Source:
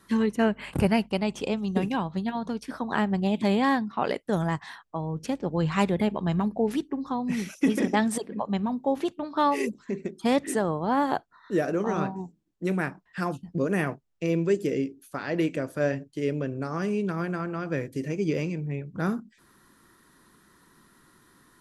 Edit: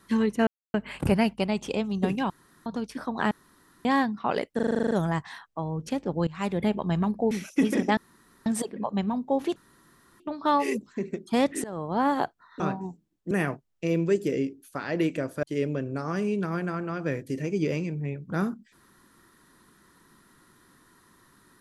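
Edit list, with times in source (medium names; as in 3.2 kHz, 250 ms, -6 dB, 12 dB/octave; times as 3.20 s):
0.47 s: insert silence 0.27 s
2.03–2.39 s: room tone
3.04–3.58 s: room tone
4.28 s: stutter 0.04 s, 10 plays
5.64–6.04 s: fade in, from -19.5 dB
6.68–7.36 s: delete
8.02 s: insert room tone 0.49 s
9.12 s: insert room tone 0.64 s
10.56–10.88 s: fade in, from -19.5 dB
11.52–11.95 s: delete
12.66–13.70 s: delete
15.82–16.09 s: delete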